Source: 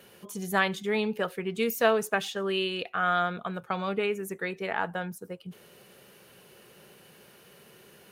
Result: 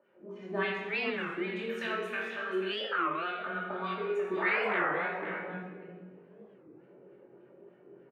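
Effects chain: level-controlled noise filter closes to 460 Hz, open at -25 dBFS; treble shelf 2.7 kHz +10 dB; compression, threshold -32 dBFS, peak gain reduction 15 dB; painted sound noise, 4.36–4.91 s, 350–2300 Hz -34 dBFS; wah-wah 3.4 Hz 320–2400 Hz, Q 2.4; doubling 22 ms -3.5 dB; delay 488 ms -9 dB; simulated room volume 1100 m³, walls mixed, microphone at 2.6 m; warped record 33 1/3 rpm, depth 250 cents; trim +2 dB

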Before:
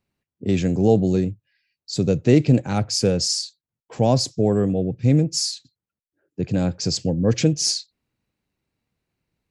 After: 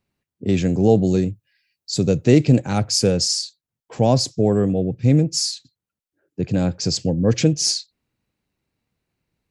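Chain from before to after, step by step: 1.01–3.23 s: treble shelf 5.2 kHz -> 8.5 kHz +7 dB; trim +1.5 dB

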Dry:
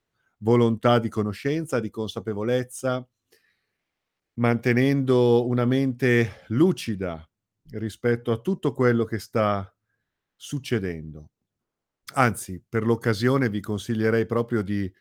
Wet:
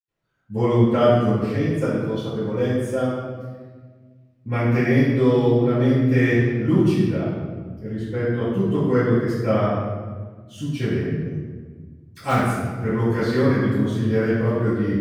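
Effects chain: 7.87–8.42 s: treble shelf 5.7 kHz -> 8.8 kHz -10.5 dB; in parallel at -6.5 dB: integer overflow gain 6.5 dB; on the sum: reverberation RT60 1.5 s, pre-delay 77 ms; trim -6.5 dB

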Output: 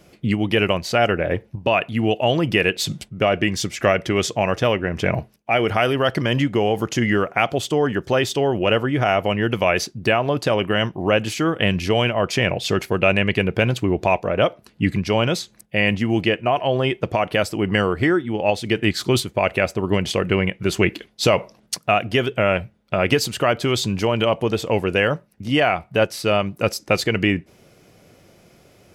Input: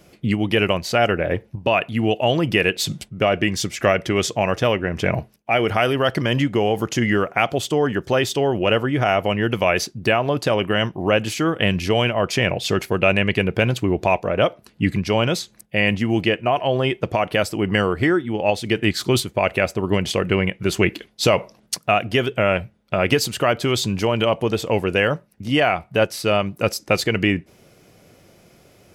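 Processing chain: treble shelf 10 kHz -3.5 dB

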